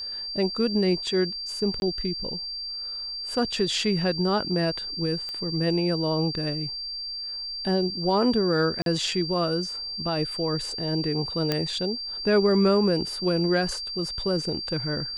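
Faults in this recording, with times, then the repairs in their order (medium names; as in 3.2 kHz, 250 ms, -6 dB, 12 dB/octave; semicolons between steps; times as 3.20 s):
whine 4.7 kHz -31 dBFS
1.80–1.82 s: dropout 21 ms
5.29 s: pop -22 dBFS
8.82–8.86 s: dropout 42 ms
11.52 s: pop -10 dBFS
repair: de-click; band-stop 4.7 kHz, Q 30; interpolate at 1.80 s, 21 ms; interpolate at 8.82 s, 42 ms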